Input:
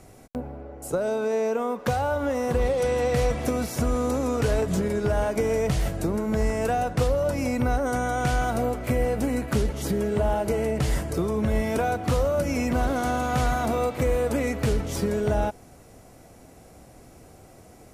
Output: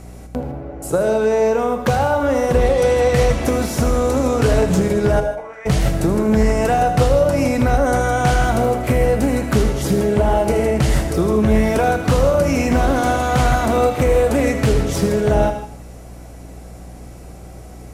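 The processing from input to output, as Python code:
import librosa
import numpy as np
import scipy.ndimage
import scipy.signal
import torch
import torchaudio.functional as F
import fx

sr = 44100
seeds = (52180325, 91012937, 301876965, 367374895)

y = fx.add_hum(x, sr, base_hz=60, snr_db=21)
y = fx.bandpass_q(y, sr, hz=fx.line((5.19, 440.0), (5.65, 2000.0)), q=4.9, at=(5.19, 5.65), fade=0.02)
y = fx.echo_feedback(y, sr, ms=79, feedback_pct=36, wet_db=-13.0)
y = fx.rev_gated(y, sr, seeds[0], gate_ms=180, shape='flat', drr_db=7.5)
y = fx.doppler_dist(y, sr, depth_ms=0.14)
y = F.gain(torch.from_numpy(y), 7.5).numpy()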